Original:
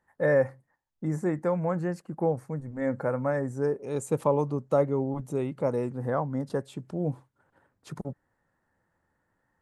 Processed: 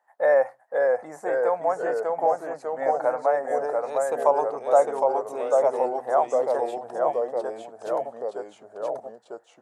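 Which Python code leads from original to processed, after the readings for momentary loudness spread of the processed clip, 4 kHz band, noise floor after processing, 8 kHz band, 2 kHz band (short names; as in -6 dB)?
13 LU, n/a, -59 dBFS, +3.0 dB, +4.0 dB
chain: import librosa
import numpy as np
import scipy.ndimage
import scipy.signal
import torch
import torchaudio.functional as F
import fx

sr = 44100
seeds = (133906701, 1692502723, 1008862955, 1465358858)

y = fx.highpass_res(x, sr, hz=700.0, q=4.9)
y = fx.echo_pitch(y, sr, ms=509, semitones=-1, count=3, db_per_echo=-3.0)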